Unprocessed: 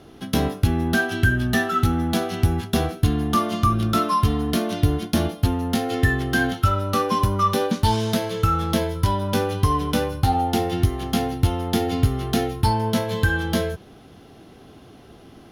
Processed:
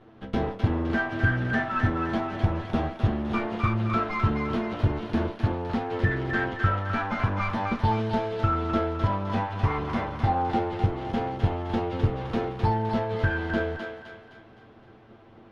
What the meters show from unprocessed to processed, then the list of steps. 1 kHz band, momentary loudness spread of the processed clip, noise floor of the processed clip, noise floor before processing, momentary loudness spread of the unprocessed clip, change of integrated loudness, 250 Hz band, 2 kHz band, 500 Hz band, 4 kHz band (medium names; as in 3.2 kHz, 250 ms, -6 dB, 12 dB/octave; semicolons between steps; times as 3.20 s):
-4.5 dB, 5 LU, -51 dBFS, -47 dBFS, 4 LU, -5.0 dB, -5.5 dB, -3.5 dB, -4.5 dB, -12.5 dB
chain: comb filter that takes the minimum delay 9 ms; low-pass 2.1 kHz 12 dB/octave; on a send: thinning echo 258 ms, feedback 49%, high-pass 740 Hz, level -3.5 dB; on the sum: trim -4 dB